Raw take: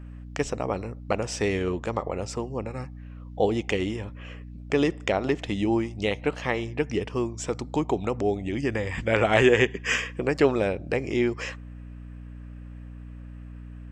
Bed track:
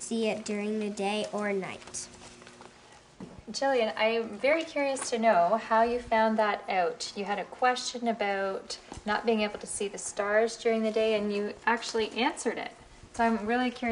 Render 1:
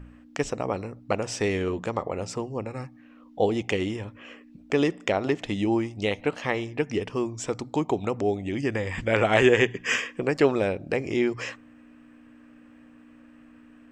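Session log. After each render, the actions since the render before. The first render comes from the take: de-hum 60 Hz, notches 3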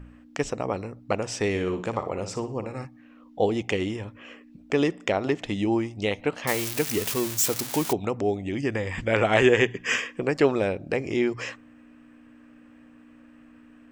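1.49–2.85 flutter echo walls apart 10.3 m, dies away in 0.35 s; 6.47–7.93 switching spikes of -16.5 dBFS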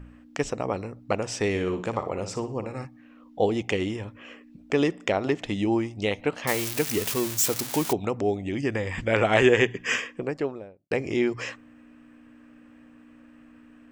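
9.83–10.91 studio fade out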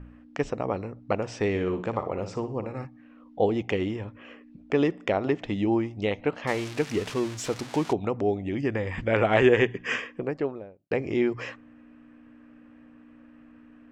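LPF 6400 Hz 12 dB/oct; high shelf 3400 Hz -10 dB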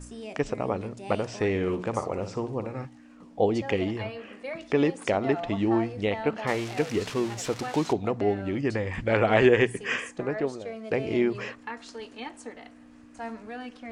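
add bed track -11 dB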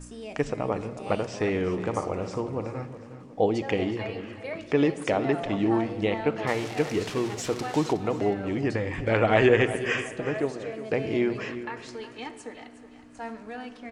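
feedback echo 0.365 s, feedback 37%, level -14 dB; shoebox room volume 2800 m³, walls mixed, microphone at 0.52 m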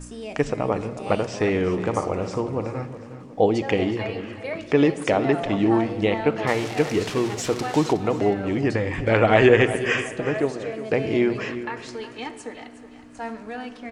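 gain +4.5 dB; limiter -2 dBFS, peak gain reduction 1 dB

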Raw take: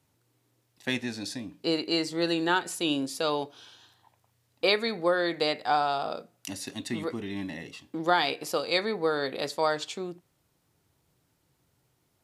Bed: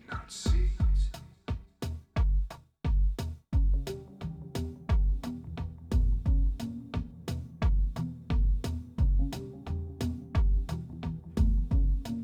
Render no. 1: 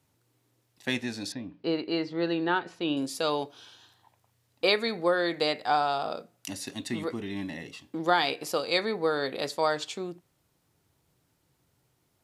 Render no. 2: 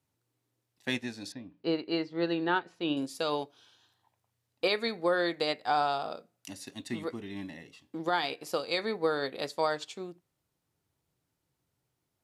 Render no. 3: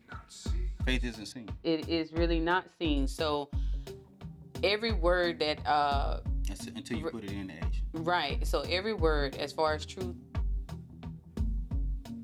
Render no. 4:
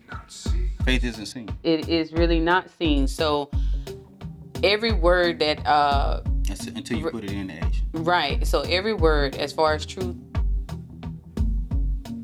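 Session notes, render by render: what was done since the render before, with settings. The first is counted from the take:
1.32–2.97 air absorption 270 m
limiter -16 dBFS, peak gain reduction 6.5 dB; upward expander 1.5:1, over -43 dBFS
add bed -7 dB
gain +8.5 dB

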